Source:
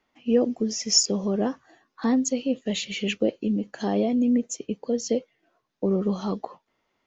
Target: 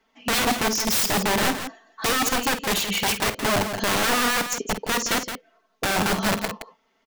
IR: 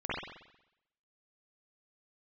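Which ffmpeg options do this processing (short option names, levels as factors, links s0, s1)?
-filter_complex "[0:a]equalizer=f=83:t=o:w=1.6:g=-10.5,aecho=1:1:4.5:0.96,aeval=exprs='(mod(10*val(0)+1,2)-1)/10':c=same,asplit=2[s0][s1];[s1]aecho=0:1:49.56|169.1:0.282|0.355[s2];[s0][s2]amix=inputs=2:normalize=0,volume=1.41"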